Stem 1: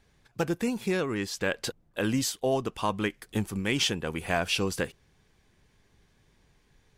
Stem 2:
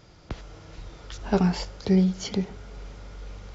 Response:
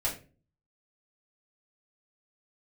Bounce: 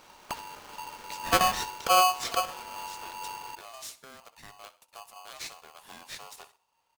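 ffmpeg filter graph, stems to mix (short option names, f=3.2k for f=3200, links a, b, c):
-filter_complex "[0:a]acrossover=split=180|3000[a][b][c];[b]acompressor=threshold=-46dB:ratio=2.5[d];[a][d][c]amix=inputs=3:normalize=0,adelay=1600,volume=-11dB,asplit=3[e][f][g];[f]volume=-22.5dB[h];[g]volume=-16.5dB[i];[1:a]volume=-0.5dB,asplit=3[j][k][l];[k]volume=-22dB[m];[l]volume=-19dB[n];[2:a]atrim=start_sample=2205[o];[h][m]amix=inputs=2:normalize=0[p];[p][o]afir=irnorm=-1:irlink=0[q];[i][n]amix=inputs=2:normalize=0,aecho=0:1:64|128|192|256|320:1|0.35|0.122|0.0429|0.015[r];[e][j][q][r]amix=inputs=4:normalize=0,equalizer=f=120:t=o:w=0.58:g=-11.5,aeval=exprs='val(0)*sgn(sin(2*PI*920*n/s))':c=same"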